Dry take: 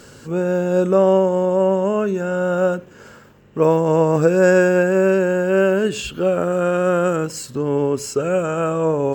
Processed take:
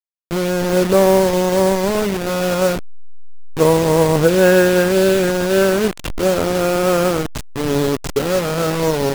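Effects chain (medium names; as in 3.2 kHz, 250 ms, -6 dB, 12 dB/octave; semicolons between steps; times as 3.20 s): send-on-delta sampling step -18.5 dBFS; trim +2.5 dB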